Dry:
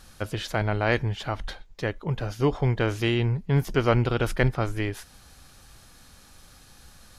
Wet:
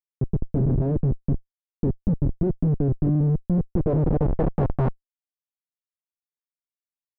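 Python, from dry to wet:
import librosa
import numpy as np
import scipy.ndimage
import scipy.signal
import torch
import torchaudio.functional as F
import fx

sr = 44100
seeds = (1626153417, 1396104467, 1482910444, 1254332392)

y = fx.pitch_keep_formants(x, sr, semitones=4.0)
y = fx.schmitt(y, sr, flips_db=-24.0)
y = fx.filter_sweep_lowpass(y, sr, from_hz=320.0, to_hz=2600.0, start_s=3.45, end_s=6.16, q=1.1)
y = F.gain(torch.from_numpy(y), 7.5).numpy()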